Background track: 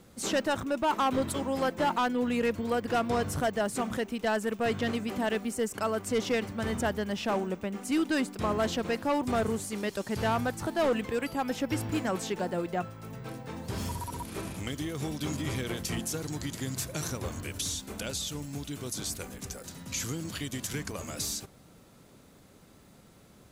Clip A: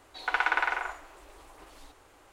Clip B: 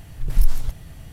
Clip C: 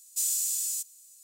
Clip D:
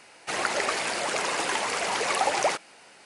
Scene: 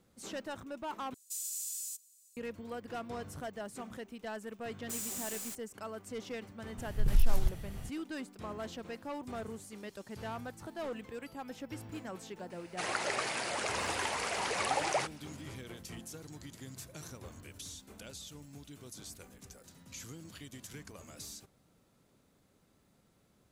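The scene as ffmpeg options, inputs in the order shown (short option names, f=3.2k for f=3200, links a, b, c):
-filter_complex "[3:a]asplit=2[a][b];[0:a]volume=-13dB[c];[a]alimiter=limit=-20dB:level=0:latency=1:release=33[d];[b]acrusher=bits=4:mix=0:aa=0.000001[e];[2:a]alimiter=level_in=11dB:limit=-1dB:release=50:level=0:latency=1[f];[4:a]acontrast=45[g];[c]asplit=2[h][i];[h]atrim=end=1.144[j];[d]atrim=end=1.23,asetpts=PTS-STARTPTS,volume=-9.5dB[k];[i]atrim=start=2.366[l];[e]atrim=end=1.23,asetpts=PTS-STARTPTS,volume=-12.5dB,afade=t=in:d=0.004:c=hsin,afade=t=out:st=1.226:d=0.004:c=hsin,adelay=208593S[m];[f]atrim=end=1.12,asetpts=PTS-STARTPTS,volume=-14.5dB,afade=t=in:d=0.004:c=hsin,afade=t=out:st=1.116:d=0.004:c=hsin,adelay=6780[n];[g]atrim=end=3.05,asetpts=PTS-STARTPTS,volume=-13dB,afade=t=in:d=0.004:c=hsin,afade=t=out:st=3.046:d=0.004:c=hsin,adelay=12500[o];[j][k]acrossfade=d=0.004:c1=hsin:c2=hsin[p];[p][l]acrossfade=d=0.004:c1=hsin:c2=hsin[q];[q][m][n][o]amix=inputs=4:normalize=0"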